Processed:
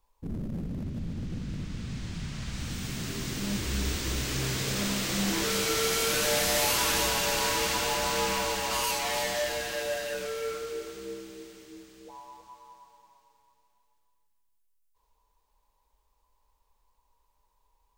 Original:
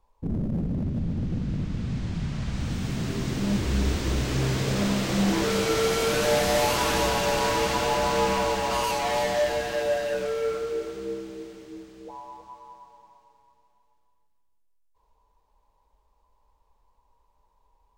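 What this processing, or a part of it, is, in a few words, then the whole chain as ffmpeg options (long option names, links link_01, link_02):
smiley-face EQ: -af "lowshelf=frequency=91:gain=7,lowshelf=frequency=280:gain=-11.5,equalizer=frequency=700:width_type=o:width=1.6:gain=-6,highshelf=frequency=7700:gain=8.5"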